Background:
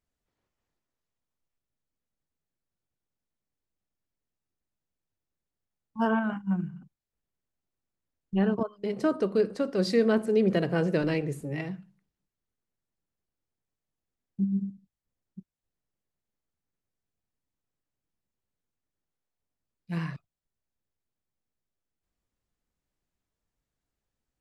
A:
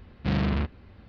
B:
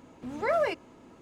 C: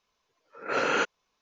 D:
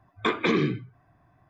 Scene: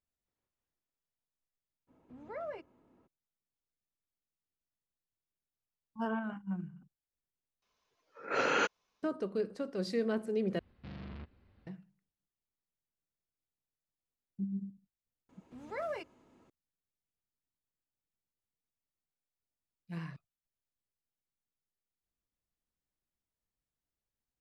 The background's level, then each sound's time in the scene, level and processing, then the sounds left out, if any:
background -9.5 dB
1.87 add B -14 dB, fades 0.02 s + LPF 1300 Hz 6 dB/oct
7.62 replace with C -4 dB
10.59 replace with A -16 dB + limiter -21 dBFS
15.29 add B -12 dB
not used: D

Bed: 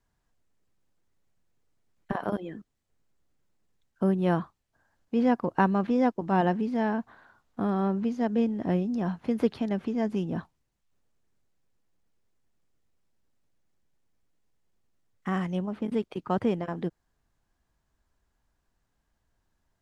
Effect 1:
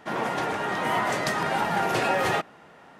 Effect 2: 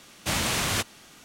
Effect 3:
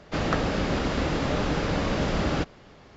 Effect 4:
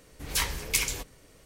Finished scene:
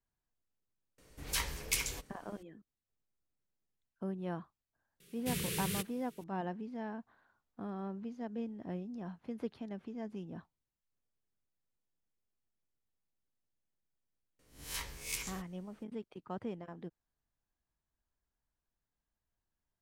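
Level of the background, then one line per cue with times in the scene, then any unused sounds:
bed -14.5 dB
0.98 add 4 -7 dB
5 add 2 -13.5 dB + EQ curve 110 Hz 0 dB, 170 Hz +14 dB, 270 Hz -9 dB, 420 Hz +12 dB, 750 Hz -25 dB, 1100 Hz -13 dB, 1700 Hz -3 dB, 2700 Hz +1 dB, 6500 Hz -3 dB, 11000 Hz +9 dB
14.39 add 4 -15 dB + spectral swells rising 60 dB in 0.44 s
not used: 1, 3

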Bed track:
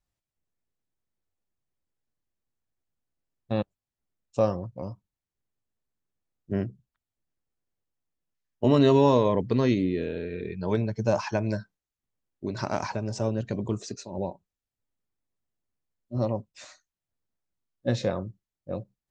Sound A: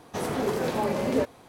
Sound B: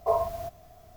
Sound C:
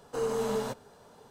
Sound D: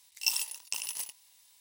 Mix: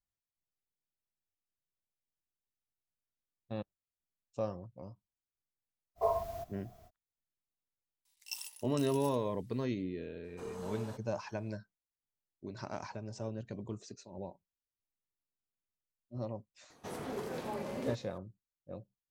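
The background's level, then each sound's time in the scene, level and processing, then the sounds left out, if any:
bed track -12.5 dB
5.95 add B -6 dB, fades 0.05 s
8.05 add D -13.5 dB
10.24 add C -13.5 dB
16.7 add A -12.5 dB

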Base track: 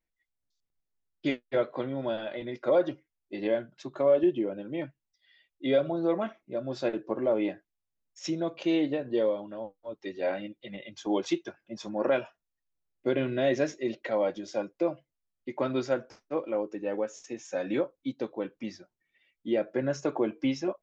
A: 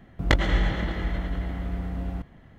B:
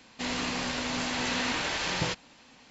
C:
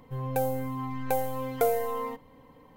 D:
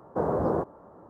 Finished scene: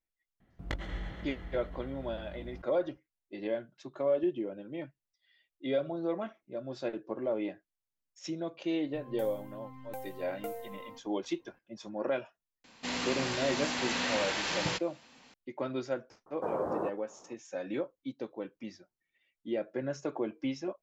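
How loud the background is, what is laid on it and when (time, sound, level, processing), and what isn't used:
base track -6 dB
0.4 add A -16 dB
8.83 add C -15 dB
12.64 add B -2.5 dB + HPF 99 Hz 6 dB/oct
16.26 add D -4.5 dB + HPF 460 Hz 6 dB/oct

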